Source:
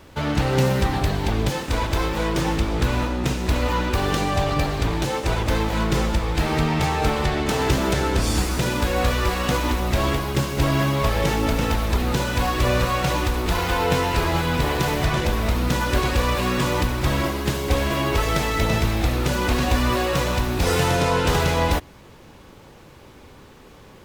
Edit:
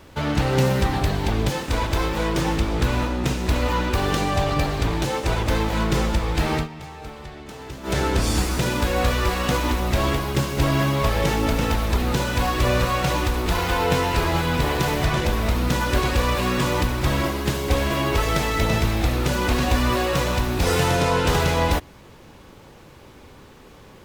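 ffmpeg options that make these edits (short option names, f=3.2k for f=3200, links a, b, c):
-filter_complex "[0:a]asplit=3[a][b][c];[a]atrim=end=6.68,asetpts=PTS-STARTPTS,afade=t=out:st=6.55:d=0.13:silence=0.158489[d];[b]atrim=start=6.68:end=7.83,asetpts=PTS-STARTPTS,volume=-16dB[e];[c]atrim=start=7.83,asetpts=PTS-STARTPTS,afade=t=in:d=0.13:silence=0.158489[f];[d][e][f]concat=n=3:v=0:a=1"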